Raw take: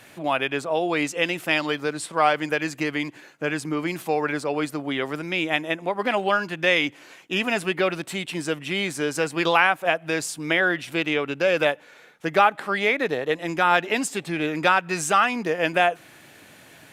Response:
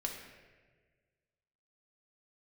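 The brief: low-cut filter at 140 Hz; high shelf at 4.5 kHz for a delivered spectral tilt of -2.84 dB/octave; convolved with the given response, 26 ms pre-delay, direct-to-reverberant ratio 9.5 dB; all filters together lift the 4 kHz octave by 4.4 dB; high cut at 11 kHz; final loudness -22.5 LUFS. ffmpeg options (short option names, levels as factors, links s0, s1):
-filter_complex "[0:a]highpass=140,lowpass=11000,equalizer=f=4000:t=o:g=4.5,highshelf=f=4500:g=3.5,asplit=2[s0][s1];[1:a]atrim=start_sample=2205,adelay=26[s2];[s1][s2]afir=irnorm=-1:irlink=0,volume=0.299[s3];[s0][s3]amix=inputs=2:normalize=0,volume=0.944"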